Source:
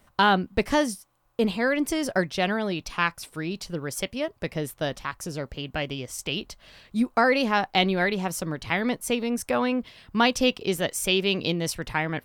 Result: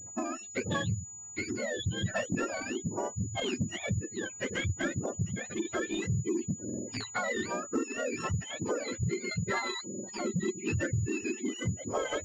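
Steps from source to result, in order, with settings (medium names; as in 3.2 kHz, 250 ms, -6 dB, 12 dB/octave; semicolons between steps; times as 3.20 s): spectrum inverted on a logarithmic axis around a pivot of 1 kHz; recorder AGC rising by 5.8 dB/s; spectral gate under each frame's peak -20 dB strong; 9.00–10.65 s: comb 5.3 ms, depth 63%; compression 8:1, threshold -32 dBFS, peak gain reduction 17 dB; rotary cabinet horn 0.8 Hz; saturation -26.5 dBFS, distortion -22 dB; class-D stage that switches slowly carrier 6.9 kHz; trim +6 dB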